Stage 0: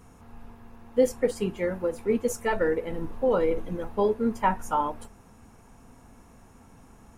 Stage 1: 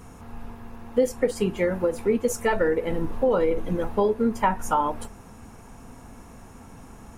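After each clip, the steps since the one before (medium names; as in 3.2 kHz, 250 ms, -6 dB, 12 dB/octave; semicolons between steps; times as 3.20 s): compression 2.5:1, threshold -28 dBFS, peak gain reduction 8.5 dB; trim +7.5 dB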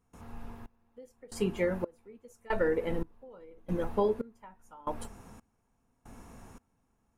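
trance gate ".xxxx...." 114 bpm -24 dB; trim -5.5 dB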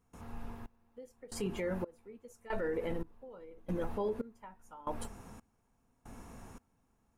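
peak limiter -27 dBFS, peak gain reduction 10.5 dB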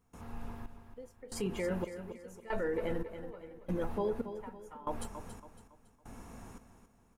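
feedback delay 279 ms, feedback 39%, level -10.5 dB; trim +1 dB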